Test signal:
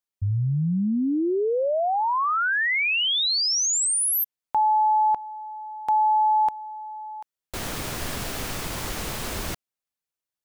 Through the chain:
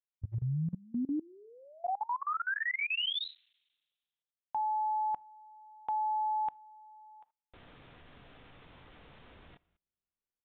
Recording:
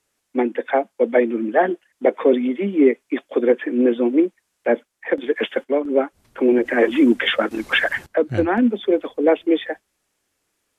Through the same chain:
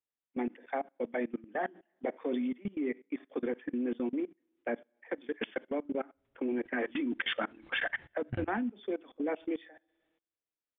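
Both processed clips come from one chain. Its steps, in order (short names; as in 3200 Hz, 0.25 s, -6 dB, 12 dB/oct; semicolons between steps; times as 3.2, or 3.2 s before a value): dynamic EQ 480 Hz, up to -7 dB, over -31 dBFS, Q 2.1; two-slope reverb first 0.32 s, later 1.6 s, from -27 dB, DRR 11.5 dB; level quantiser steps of 23 dB; downsampling 8000 Hz; gain -8.5 dB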